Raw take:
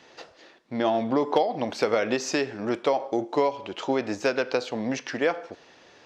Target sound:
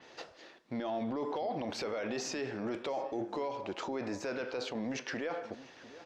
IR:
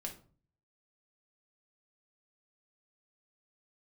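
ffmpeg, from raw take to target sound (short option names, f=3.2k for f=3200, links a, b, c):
-filter_complex "[0:a]asettb=1/sr,asplit=3[a][b][c];[a]atrim=end=3.544[d];[b]atrim=start=3.54:end=4.33,asetpts=PTS-STARTPTS,afade=t=in:d=0.004:c=qsin,afade=t=out:st=0.786:d=0.004:c=qsin,equalizer=f=3.1k:t=o:w=0.36:g=-7.5[e];[c]atrim=start=4.326[f];[d][e]acrossfade=d=0.004:c1=hsin:c2=qsin[g];[g][f]acrossfade=d=0.004:c1=qsin:c2=hsin,alimiter=level_in=1.5dB:limit=-24dB:level=0:latency=1:release=16,volume=-1.5dB,asplit=2[h][i];[i]adelay=699.7,volume=-16dB,highshelf=f=4k:g=-15.7[j];[h][j]amix=inputs=2:normalize=0,adynamicequalizer=threshold=0.00282:dfrequency=5000:dqfactor=0.7:tfrequency=5000:tqfactor=0.7:attack=5:release=100:ratio=0.375:range=2:mode=cutabove:tftype=highshelf,volume=-2.5dB"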